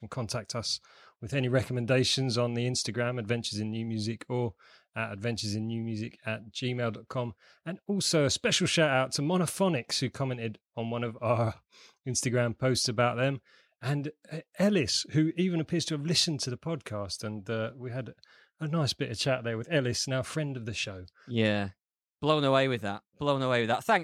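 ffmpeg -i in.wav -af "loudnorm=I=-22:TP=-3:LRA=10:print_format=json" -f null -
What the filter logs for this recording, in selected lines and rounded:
"input_i" : "-29.8",
"input_tp" : "-10.3",
"input_lra" : "5.3",
"input_thresh" : "-40.1",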